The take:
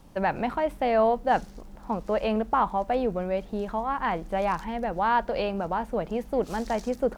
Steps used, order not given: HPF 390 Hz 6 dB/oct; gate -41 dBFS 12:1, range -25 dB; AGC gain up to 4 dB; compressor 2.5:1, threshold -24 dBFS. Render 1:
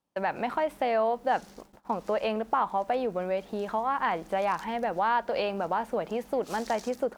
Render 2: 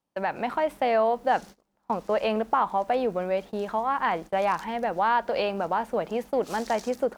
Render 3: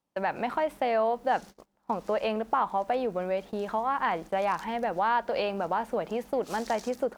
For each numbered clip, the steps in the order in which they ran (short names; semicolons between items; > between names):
gate > AGC > compressor > HPF; HPF > gate > compressor > AGC; AGC > compressor > HPF > gate